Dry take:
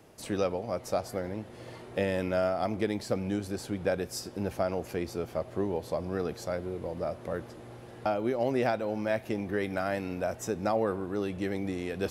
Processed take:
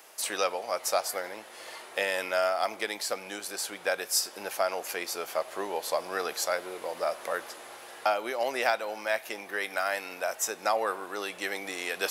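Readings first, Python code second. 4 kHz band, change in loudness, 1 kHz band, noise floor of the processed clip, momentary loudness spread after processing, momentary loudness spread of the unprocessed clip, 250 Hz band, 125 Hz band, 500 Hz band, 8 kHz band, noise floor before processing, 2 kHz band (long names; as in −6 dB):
+10.0 dB, +1.5 dB, +4.5 dB, −48 dBFS, 8 LU, 8 LU, −12.0 dB, below −20 dB, −1.0 dB, +12.5 dB, −48 dBFS, +8.0 dB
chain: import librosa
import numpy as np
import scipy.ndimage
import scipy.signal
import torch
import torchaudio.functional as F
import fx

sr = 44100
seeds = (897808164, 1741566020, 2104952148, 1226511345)

y = scipy.signal.sosfilt(scipy.signal.butter(2, 910.0, 'highpass', fs=sr, output='sos'), x)
y = fx.high_shelf(y, sr, hz=7300.0, db=8.0)
y = fx.rider(y, sr, range_db=4, speed_s=2.0)
y = F.gain(torch.from_numpy(y), 7.5).numpy()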